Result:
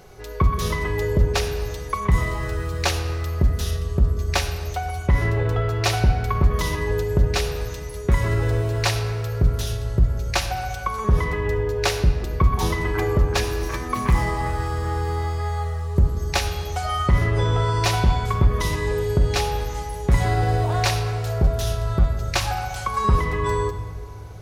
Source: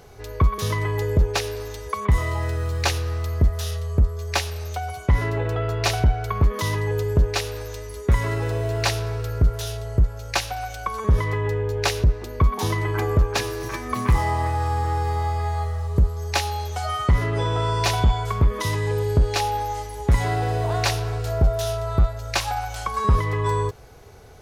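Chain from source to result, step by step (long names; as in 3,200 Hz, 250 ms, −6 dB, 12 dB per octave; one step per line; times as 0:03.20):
rectangular room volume 2,800 cubic metres, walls mixed, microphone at 1 metre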